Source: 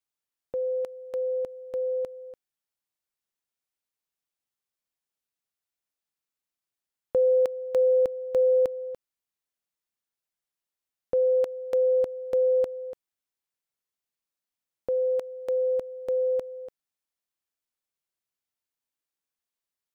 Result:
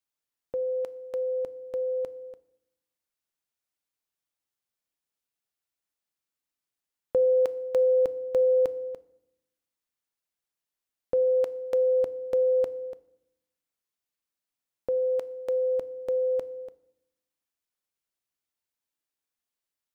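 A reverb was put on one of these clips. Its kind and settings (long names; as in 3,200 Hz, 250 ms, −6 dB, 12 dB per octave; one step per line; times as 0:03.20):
feedback delay network reverb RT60 0.81 s, low-frequency decay 1.55×, high-frequency decay 0.8×, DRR 15.5 dB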